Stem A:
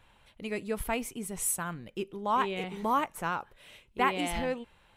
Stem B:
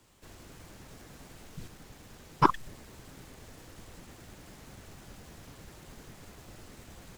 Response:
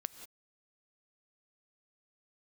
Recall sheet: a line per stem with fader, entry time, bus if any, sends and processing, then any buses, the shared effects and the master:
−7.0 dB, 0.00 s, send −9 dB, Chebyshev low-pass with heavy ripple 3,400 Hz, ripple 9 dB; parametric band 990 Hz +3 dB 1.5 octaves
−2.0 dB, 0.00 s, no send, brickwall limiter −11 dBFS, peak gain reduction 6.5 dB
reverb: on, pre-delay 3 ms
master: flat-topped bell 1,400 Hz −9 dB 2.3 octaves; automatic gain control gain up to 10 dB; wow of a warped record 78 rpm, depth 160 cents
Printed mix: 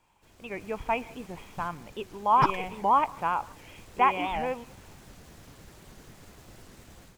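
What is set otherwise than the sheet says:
stem B −2.0 dB → −10.5 dB
master: missing flat-topped bell 1,400 Hz −9 dB 2.3 octaves

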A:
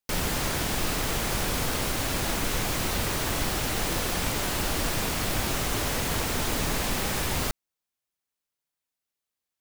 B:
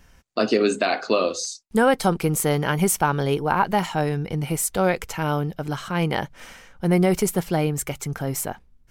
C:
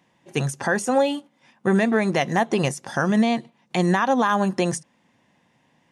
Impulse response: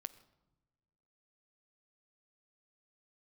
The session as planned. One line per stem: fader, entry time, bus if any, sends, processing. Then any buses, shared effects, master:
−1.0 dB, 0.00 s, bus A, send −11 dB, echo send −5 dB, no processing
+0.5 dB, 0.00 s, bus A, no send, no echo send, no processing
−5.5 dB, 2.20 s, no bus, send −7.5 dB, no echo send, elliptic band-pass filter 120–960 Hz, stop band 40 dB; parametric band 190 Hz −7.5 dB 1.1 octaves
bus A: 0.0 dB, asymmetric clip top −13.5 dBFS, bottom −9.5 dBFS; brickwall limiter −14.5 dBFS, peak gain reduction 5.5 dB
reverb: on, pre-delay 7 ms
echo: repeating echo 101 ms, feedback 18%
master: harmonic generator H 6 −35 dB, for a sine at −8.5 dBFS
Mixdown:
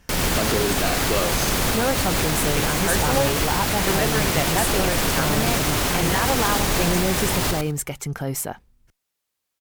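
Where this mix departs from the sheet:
stem A −1.0 dB → +5.5 dB
stem C: missing elliptic band-pass filter 120–960 Hz, stop band 40 dB

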